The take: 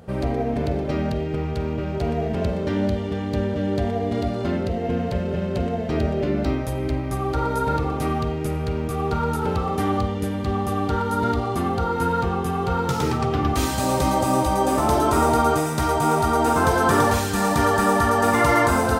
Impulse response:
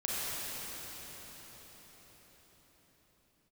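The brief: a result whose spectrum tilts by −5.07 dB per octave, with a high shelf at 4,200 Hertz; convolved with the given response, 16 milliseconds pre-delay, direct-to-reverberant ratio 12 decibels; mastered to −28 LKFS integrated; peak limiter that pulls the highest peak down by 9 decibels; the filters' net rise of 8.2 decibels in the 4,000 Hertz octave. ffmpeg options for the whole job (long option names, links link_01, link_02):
-filter_complex "[0:a]equalizer=frequency=4000:width_type=o:gain=8,highshelf=frequency=4200:gain=4,alimiter=limit=-14.5dB:level=0:latency=1,asplit=2[link_01][link_02];[1:a]atrim=start_sample=2205,adelay=16[link_03];[link_02][link_03]afir=irnorm=-1:irlink=0,volume=-19.5dB[link_04];[link_01][link_04]amix=inputs=2:normalize=0,volume=-4dB"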